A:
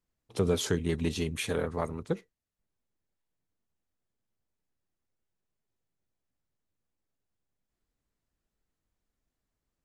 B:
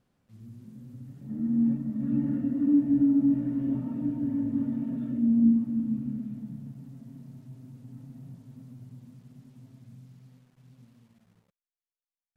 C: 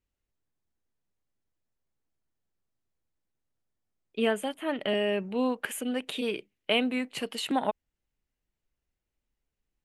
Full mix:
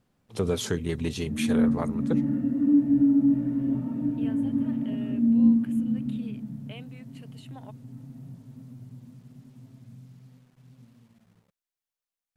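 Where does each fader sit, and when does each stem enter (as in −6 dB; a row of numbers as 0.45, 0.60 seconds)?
+0.5, +2.0, −19.5 decibels; 0.00, 0.00, 0.00 seconds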